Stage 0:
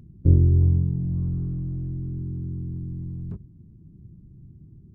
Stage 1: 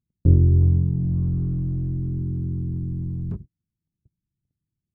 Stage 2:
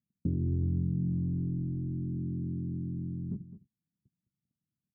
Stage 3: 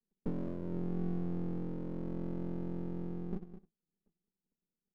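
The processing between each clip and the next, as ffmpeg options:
ffmpeg -i in.wav -filter_complex "[0:a]agate=range=-42dB:threshold=-39dB:ratio=16:detection=peak,asplit=2[link_01][link_02];[link_02]acompressor=threshold=-28dB:ratio=6,volume=-2dB[link_03];[link_01][link_03]amix=inputs=2:normalize=0" out.wav
ffmpeg -i in.wav -af "alimiter=limit=-11.5dB:level=0:latency=1:release=354,bandpass=frequency=220:width_type=q:width=2.1:csg=0,aecho=1:1:209:0.2" out.wav
ffmpeg -i in.wav -af "asoftclip=type=tanh:threshold=-24dB,asuperpass=centerf=260:order=20:qfactor=0.96,aeval=exprs='max(val(0),0)':channel_layout=same,volume=3.5dB" out.wav

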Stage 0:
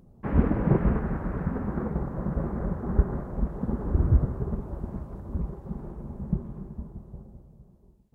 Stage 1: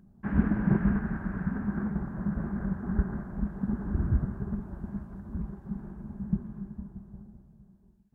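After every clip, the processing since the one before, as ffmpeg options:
ffmpeg -i in.wav -af "equalizer=frequency=200:width_type=o:width=0.33:gain=11,equalizer=frequency=500:width_type=o:width=0.33:gain=-11,equalizer=frequency=1600:width_type=o:width=0.33:gain=11,volume=-6dB" out.wav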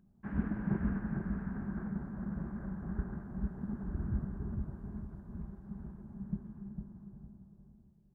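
ffmpeg -i in.wav -filter_complex "[0:a]asplit=2[link_01][link_02];[link_02]adelay=453,lowpass=frequency=940:poles=1,volume=-4dB,asplit=2[link_03][link_04];[link_04]adelay=453,lowpass=frequency=940:poles=1,volume=0.34,asplit=2[link_05][link_06];[link_06]adelay=453,lowpass=frequency=940:poles=1,volume=0.34,asplit=2[link_07][link_08];[link_08]adelay=453,lowpass=frequency=940:poles=1,volume=0.34[link_09];[link_01][link_03][link_05][link_07][link_09]amix=inputs=5:normalize=0,volume=-9dB" out.wav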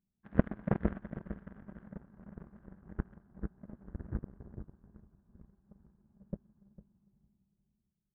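ffmpeg -i in.wav -af "aeval=exprs='0.119*(cos(1*acos(clip(val(0)/0.119,-1,1)))-cos(1*PI/2))+0.0422*(cos(3*acos(clip(val(0)/0.119,-1,1)))-cos(3*PI/2))+0.00211*(cos(5*acos(clip(val(0)/0.119,-1,1)))-cos(5*PI/2))+0.00266*(cos(6*acos(clip(val(0)/0.119,-1,1)))-cos(6*PI/2))+0.0015*(cos(8*acos(clip(val(0)/0.119,-1,1)))-cos(8*PI/2))':channel_layout=same,volume=11.5dB" out.wav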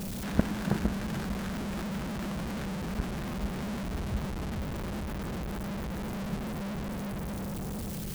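ffmpeg -i in.wav -af "aeval=exprs='val(0)+0.5*0.0355*sgn(val(0))':channel_layout=same" out.wav

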